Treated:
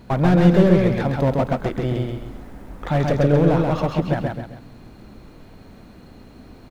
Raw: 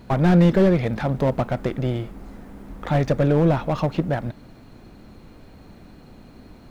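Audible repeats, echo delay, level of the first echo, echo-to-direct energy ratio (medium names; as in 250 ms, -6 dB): 3, 133 ms, -3.0 dB, -2.5 dB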